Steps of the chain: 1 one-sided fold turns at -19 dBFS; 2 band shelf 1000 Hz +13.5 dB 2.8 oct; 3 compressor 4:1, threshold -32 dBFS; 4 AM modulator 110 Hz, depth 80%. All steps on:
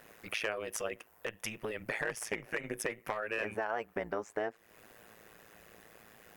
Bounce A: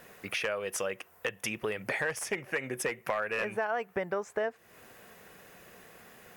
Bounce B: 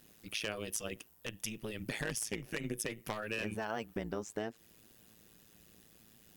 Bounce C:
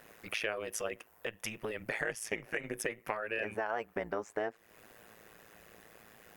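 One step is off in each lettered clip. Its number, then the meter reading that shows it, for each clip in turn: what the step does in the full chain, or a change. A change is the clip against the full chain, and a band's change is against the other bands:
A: 4, crest factor change -3.0 dB; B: 2, 1 kHz band -7.5 dB; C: 1, distortion -14 dB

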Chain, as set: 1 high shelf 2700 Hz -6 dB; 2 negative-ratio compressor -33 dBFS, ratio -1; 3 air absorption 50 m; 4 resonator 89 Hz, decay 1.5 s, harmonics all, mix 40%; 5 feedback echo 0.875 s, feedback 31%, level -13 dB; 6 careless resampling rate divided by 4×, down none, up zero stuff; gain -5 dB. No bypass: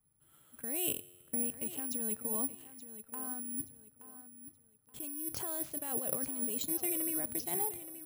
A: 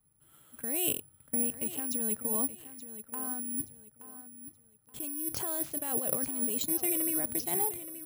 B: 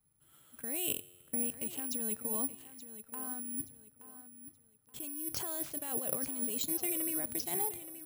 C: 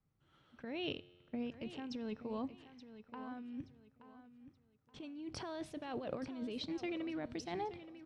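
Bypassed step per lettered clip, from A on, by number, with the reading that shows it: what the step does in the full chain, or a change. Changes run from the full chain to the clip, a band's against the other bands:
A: 4, loudness change +4.0 LU; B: 1, 4 kHz band +3.0 dB; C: 6, 8 kHz band -27.5 dB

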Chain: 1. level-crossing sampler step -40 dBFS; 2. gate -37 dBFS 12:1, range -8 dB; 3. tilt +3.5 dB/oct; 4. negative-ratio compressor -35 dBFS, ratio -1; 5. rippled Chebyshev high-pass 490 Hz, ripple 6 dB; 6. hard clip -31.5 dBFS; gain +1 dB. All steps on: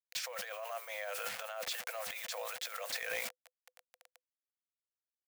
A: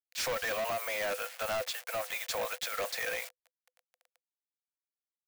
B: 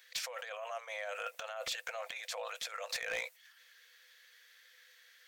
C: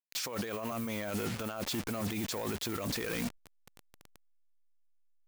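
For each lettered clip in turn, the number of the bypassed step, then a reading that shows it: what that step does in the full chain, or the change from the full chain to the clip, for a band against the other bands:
4, crest factor change -6.0 dB; 1, distortion -23 dB; 5, 250 Hz band +28.5 dB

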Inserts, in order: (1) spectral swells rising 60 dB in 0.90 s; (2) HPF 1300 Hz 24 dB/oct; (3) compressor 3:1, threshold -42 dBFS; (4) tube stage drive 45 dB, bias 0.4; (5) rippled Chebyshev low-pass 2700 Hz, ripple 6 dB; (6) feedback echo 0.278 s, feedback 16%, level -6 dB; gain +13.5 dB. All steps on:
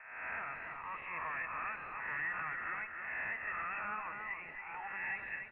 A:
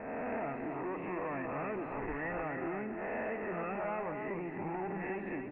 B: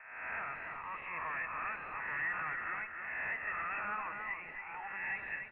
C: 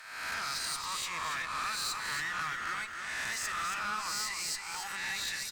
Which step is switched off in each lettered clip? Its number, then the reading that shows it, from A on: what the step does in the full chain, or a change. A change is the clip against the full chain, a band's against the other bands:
2, 2 kHz band -21.5 dB; 3, loudness change +1.0 LU; 5, 500 Hz band -3.5 dB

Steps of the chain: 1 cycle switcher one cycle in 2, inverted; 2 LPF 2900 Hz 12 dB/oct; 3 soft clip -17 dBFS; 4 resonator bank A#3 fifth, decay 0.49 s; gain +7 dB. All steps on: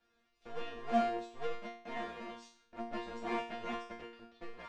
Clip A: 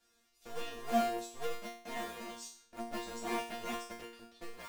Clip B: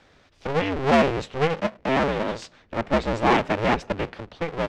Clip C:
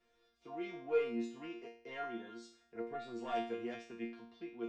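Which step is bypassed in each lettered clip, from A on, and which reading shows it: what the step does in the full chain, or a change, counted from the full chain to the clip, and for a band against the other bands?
2, 4 kHz band +4.5 dB; 4, 125 Hz band +12.0 dB; 1, 500 Hz band +4.5 dB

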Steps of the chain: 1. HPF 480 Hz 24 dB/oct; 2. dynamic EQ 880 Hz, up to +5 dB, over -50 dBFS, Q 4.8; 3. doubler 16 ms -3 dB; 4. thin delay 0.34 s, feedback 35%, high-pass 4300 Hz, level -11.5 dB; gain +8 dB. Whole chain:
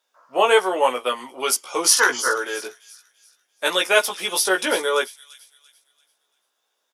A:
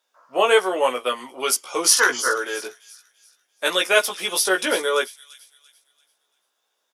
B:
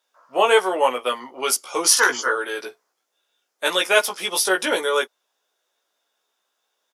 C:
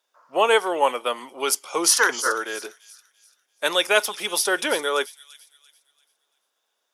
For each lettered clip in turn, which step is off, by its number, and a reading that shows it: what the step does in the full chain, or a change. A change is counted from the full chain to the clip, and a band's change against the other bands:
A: 2, 1 kHz band -1.5 dB; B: 4, echo-to-direct -25.5 dB to none; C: 3, loudness change -1.5 LU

